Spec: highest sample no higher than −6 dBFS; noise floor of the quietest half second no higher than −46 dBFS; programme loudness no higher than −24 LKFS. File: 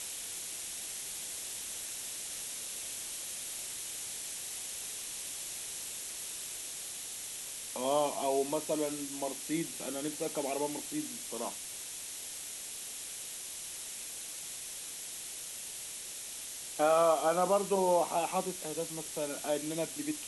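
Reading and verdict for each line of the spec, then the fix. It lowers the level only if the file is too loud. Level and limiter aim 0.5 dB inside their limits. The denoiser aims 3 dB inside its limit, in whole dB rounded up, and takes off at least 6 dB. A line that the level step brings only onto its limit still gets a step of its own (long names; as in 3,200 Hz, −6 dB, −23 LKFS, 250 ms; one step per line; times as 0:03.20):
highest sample −16.5 dBFS: in spec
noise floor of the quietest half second −43 dBFS: out of spec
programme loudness −35.0 LKFS: in spec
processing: broadband denoise 6 dB, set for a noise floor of −43 dBFS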